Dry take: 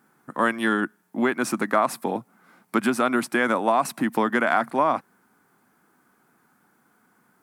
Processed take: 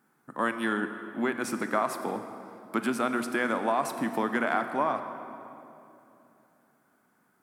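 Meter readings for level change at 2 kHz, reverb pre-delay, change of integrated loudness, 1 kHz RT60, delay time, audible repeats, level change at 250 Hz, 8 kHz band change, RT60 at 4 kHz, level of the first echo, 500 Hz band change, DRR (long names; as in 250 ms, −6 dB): −6.0 dB, 23 ms, −6.0 dB, 2.8 s, no echo audible, no echo audible, −5.5 dB, −6.0 dB, 2.0 s, no echo audible, −5.5 dB, 8.0 dB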